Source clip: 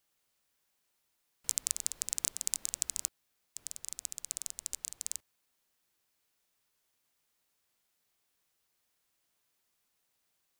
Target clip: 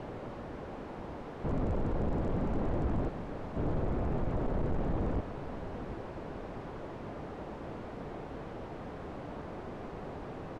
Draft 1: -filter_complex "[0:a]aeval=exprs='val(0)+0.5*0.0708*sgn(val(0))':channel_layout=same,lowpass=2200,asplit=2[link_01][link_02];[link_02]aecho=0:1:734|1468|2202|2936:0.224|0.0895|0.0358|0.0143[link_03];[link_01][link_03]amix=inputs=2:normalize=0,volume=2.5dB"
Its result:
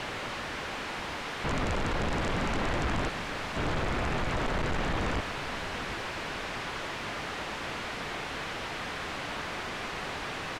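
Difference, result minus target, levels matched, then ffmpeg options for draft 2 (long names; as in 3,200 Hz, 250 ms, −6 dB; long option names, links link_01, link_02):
2,000 Hz band +13.0 dB
-filter_complex "[0:a]aeval=exprs='val(0)+0.5*0.0708*sgn(val(0))':channel_layout=same,lowpass=590,asplit=2[link_01][link_02];[link_02]aecho=0:1:734|1468|2202|2936:0.224|0.0895|0.0358|0.0143[link_03];[link_01][link_03]amix=inputs=2:normalize=0,volume=2.5dB"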